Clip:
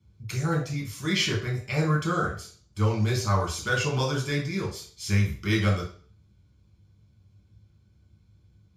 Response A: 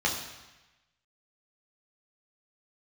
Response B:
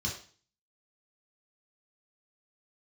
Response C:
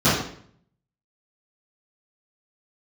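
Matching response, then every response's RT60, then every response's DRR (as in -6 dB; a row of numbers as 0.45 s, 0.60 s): B; 1.1 s, 0.40 s, 0.60 s; -2.0 dB, -3.0 dB, -15.0 dB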